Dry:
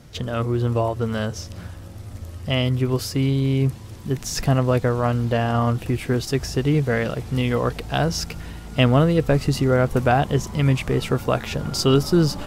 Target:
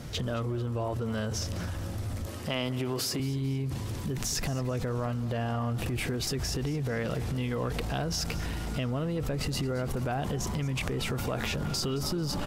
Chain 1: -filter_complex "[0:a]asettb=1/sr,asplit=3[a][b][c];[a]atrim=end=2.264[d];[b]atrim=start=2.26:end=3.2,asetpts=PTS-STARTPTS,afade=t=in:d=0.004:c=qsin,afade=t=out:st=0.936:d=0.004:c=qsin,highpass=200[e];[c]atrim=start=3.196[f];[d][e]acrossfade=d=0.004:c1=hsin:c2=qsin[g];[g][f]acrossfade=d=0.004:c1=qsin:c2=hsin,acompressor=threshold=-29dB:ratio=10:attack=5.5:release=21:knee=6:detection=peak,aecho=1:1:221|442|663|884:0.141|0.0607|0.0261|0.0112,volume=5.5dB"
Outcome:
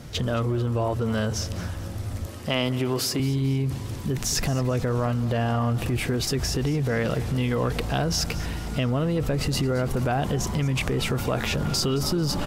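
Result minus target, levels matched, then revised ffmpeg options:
compressor: peak gain reduction -6.5 dB
-filter_complex "[0:a]asettb=1/sr,asplit=3[a][b][c];[a]atrim=end=2.264[d];[b]atrim=start=2.26:end=3.2,asetpts=PTS-STARTPTS,afade=t=in:d=0.004:c=qsin,afade=t=out:st=0.936:d=0.004:c=qsin,highpass=200[e];[c]atrim=start=3.196[f];[d][e]acrossfade=d=0.004:c1=hsin:c2=qsin[g];[g][f]acrossfade=d=0.004:c1=qsin:c2=hsin,acompressor=threshold=-36.5dB:ratio=10:attack=5.5:release=21:knee=6:detection=peak,aecho=1:1:221|442|663|884:0.141|0.0607|0.0261|0.0112,volume=5.5dB"

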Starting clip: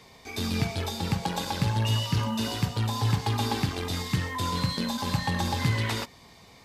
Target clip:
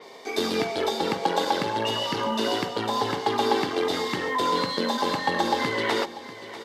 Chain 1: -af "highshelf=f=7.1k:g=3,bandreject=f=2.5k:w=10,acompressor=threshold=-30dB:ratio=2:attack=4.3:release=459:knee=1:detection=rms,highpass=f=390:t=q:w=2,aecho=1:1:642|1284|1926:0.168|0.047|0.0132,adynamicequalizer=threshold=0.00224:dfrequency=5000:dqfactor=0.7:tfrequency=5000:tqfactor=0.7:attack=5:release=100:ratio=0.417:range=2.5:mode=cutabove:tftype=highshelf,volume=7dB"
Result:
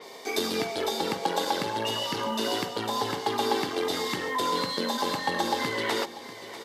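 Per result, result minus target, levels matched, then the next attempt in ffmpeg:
8000 Hz band +5.0 dB; compressor: peak gain reduction +3.5 dB
-af "highshelf=f=7.1k:g=-8,bandreject=f=2.5k:w=10,acompressor=threshold=-30dB:ratio=2:attack=4.3:release=459:knee=1:detection=rms,highpass=f=390:t=q:w=2,aecho=1:1:642|1284|1926:0.168|0.047|0.0132,adynamicequalizer=threshold=0.00224:dfrequency=5000:dqfactor=0.7:tfrequency=5000:tqfactor=0.7:attack=5:release=100:ratio=0.417:range=2.5:mode=cutabove:tftype=highshelf,volume=7dB"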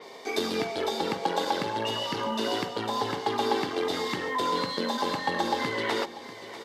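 compressor: peak gain reduction +3.5 dB
-af "highshelf=f=7.1k:g=-8,bandreject=f=2.5k:w=10,acompressor=threshold=-23dB:ratio=2:attack=4.3:release=459:knee=1:detection=rms,highpass=f=390:t=q:w=2,aecho=1:1:642|1284|1926:0.168|0.047|0.0132,adynamicequalizer=threshold=0.00224:dfrequency=5000:dqfactor=0.7:tfrequency=5000:tqfactor=0.7:attack=5:release=100:ratio=0.417:range=2.5:mode=cutabove:tftype=highshelf,volume=7dB"

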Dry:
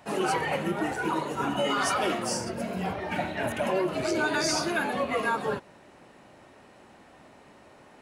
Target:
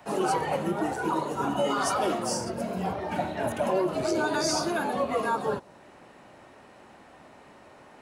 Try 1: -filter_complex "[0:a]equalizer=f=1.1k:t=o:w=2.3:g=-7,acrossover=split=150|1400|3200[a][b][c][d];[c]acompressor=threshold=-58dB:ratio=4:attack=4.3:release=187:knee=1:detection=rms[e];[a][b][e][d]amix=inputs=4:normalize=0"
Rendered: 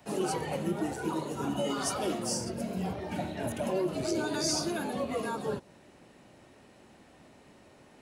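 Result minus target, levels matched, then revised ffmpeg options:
1000 Hz band -4.5 dB
-filter_complex "[0:a]equalizer=f=1.1k:t=o:w=2.3:g=3,acrossover=split=150|1400|3200[a][b][c][d];[c]acompressor=threshold=-58dB:ratio=4:attack=4.3:release=187:knee=1:detection=rms[e];[a][b][e][d]amix=inputs=4:normalize=0"

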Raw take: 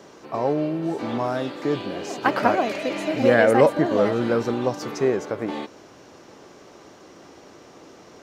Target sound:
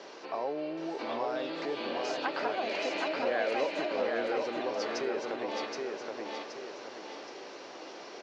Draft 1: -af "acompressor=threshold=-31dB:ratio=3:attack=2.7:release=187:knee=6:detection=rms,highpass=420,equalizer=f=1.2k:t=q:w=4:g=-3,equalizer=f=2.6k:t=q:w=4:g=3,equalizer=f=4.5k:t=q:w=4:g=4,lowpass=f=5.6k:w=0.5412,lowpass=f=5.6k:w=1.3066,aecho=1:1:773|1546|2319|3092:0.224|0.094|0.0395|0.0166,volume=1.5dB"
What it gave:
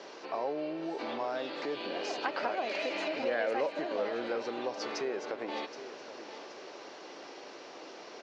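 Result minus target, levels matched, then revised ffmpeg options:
echo-to-direct -10 dB
-af "acompressor=threshold=-31dB:ratio=3:attack=2.7:release=187:knee=6:detection=rms,highpass=420,equalizer=f=1.2k:t=q:w=4:g=-3,equalizer=f=2.6k:t=q:w=4:g=3,equalizer=f=4.5k:t=q:w=4:g=4,lowpass=f=5.6k:w=0.5412,lowpass=f=5.6k:w=1.3066,aecho=1:1:773|1546|2319|3092|3865:0.708|0.297|0.125|0.0525|0.022,volume=1.5dB"

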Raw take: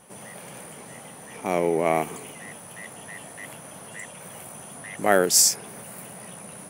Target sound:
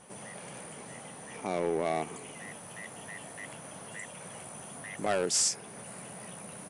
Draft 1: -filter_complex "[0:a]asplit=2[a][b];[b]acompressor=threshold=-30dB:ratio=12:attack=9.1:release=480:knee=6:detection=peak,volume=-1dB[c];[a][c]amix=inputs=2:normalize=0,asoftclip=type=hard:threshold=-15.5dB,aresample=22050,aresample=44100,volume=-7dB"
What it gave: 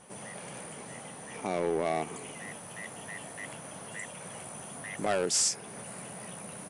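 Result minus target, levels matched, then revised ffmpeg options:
compressor: peak gain reduction -8.5 dB
-filter_complex "[0:a]asplit=2[a][b];[b]acompressor=threshold=-39.5dB:ratio=12:attack=9.1:release=480:knee=6:detection=peak,volume=-1dB[c];[a][c]amix=inputs=2:normalize=0,asoftclip=type=hard:threshold=-15.5dB,aresample=22050,aresample=44100,volume=-7dB"

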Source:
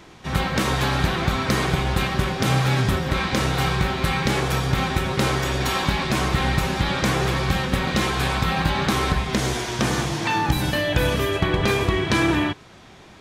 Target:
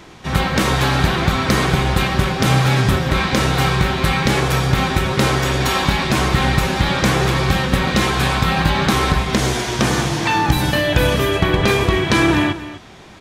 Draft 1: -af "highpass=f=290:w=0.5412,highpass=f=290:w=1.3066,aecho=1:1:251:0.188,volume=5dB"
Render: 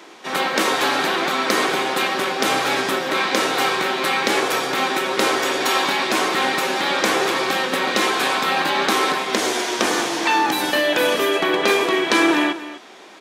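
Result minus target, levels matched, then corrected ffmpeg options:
250 Hz band -3.0 dB
-af "aecho=1:1:251:0.188,volume=5dB"

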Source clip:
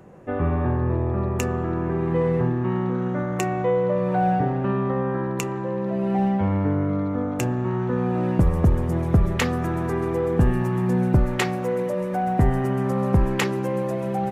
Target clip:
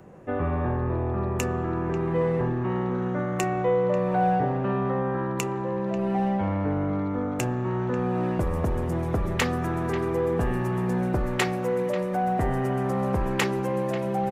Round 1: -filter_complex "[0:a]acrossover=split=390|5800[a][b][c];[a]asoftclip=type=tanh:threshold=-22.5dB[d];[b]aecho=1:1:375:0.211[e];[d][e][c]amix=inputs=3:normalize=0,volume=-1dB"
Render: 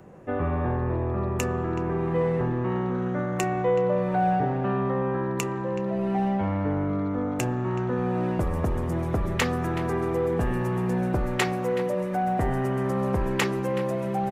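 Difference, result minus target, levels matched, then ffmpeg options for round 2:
echo 0.165 s early
-filter_complex "[0:a]acrossover=split=390|5800[a][b][c];[a]asoftclip=type=tanh:threshold=-22.5dB[d];[b]aecho=1:1:540:0.211[e];[d][e][c]amix=inputs=3:normalize=0,volume=-1dB"

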